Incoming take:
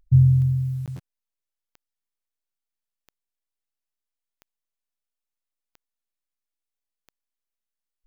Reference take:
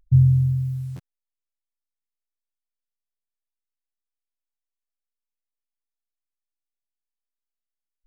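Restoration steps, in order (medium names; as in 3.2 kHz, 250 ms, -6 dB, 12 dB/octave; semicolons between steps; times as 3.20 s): de-click; interpolate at 0.86 s, 17 ms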